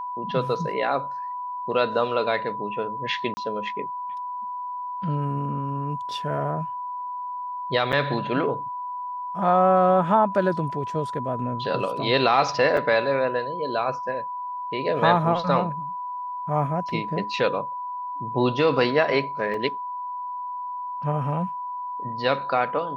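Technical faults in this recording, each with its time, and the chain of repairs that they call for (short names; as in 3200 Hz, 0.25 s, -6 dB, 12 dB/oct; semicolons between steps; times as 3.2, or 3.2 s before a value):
tone 990 Hz -29 dBFS
3.34–3.37 gap 30 ms
7.92–7.93 gap 7.6 ms
12.77–12.78 gap 5.2 ms
19.54 gap 2.9 ms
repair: notch 990 Hz, Q 30; interpolate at 3.34, 30 ms; interpolate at 7.92, 7.6 ms; interpolate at 12.77, 5.2 ms; interpolate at 19.54, 2.9 ms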